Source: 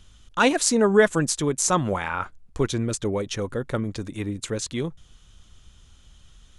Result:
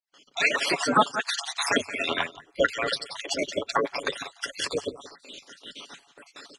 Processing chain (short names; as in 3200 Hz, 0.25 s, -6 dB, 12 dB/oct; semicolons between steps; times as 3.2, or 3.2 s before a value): random spectral dropouts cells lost 60%; gate with hold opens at -48 dBFS; HPF 64 Hz 24 dB/oct; outdoor echo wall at 30 m, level -18 dB; spectral gate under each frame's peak -15 dB weak; bell 93 Hz +5.5 dB 0.27 oct; comb 7.1 ms, depth 38%; compressor 2:1, threshold -45 dBFS, peak gain reduction 11.5 dB; three-band isolator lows -13 dB, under 220 Hz, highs -21 dB, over 6200 Hz; AGC gain up to 15.5 dB; gain +7.5 dB